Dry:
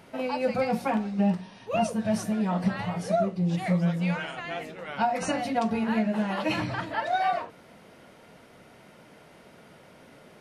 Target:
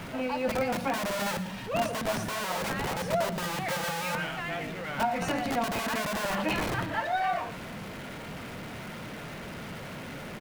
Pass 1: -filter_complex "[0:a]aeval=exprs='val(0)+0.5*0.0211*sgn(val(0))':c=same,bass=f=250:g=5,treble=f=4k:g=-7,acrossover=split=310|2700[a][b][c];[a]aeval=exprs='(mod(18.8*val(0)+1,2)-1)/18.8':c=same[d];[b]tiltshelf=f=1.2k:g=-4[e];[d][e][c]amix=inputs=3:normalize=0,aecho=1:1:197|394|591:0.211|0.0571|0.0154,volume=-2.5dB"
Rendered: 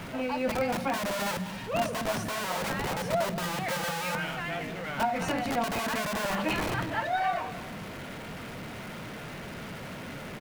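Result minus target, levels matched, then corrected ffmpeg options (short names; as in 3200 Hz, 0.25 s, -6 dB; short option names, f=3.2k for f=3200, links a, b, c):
echo 81 ms late
-filter_complex "[0:a]aeval=exprs='val(0)+0.5*0.0211*sgn(val(0))':c=same,bass=f=250:g=5,treble=f=4k:g=-7,acrossover=split=310|2700[a][b][c];[a]aeval=exprs='(mod(18.8*val(0)+1,2)-1)/18.8':c=same[d];[b]tiltshelf=f=1.2k:g=-4[e];[d][e][c]amix=inputs=3:normalize=0,aecho=1:1:116|232|348:0.211|0.0571|0.0154,volume=-2.5dB"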